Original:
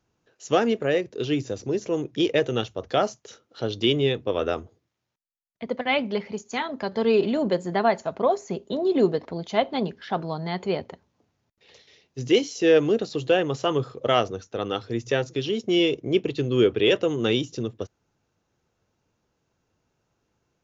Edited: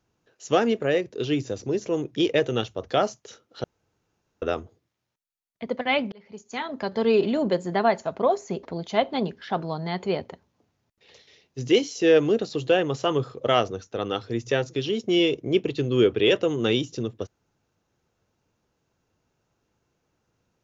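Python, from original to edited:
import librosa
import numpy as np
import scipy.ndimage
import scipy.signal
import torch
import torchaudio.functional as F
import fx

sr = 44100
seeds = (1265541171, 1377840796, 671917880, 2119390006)

y = fx.edit(x, sr, fx.room_tone_fill(start_s=3.64, length_s=0.78),
    fx.fade_in_span(start_s=6.12, length_s=0.67),
    fx.cut(start_s=8.63, length_s=0.6), tone=tone)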